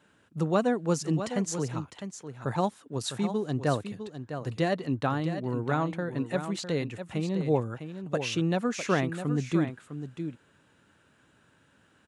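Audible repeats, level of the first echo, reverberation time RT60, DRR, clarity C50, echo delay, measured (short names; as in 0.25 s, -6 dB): 1, -9.5 dB, none, none, none, 0.655 s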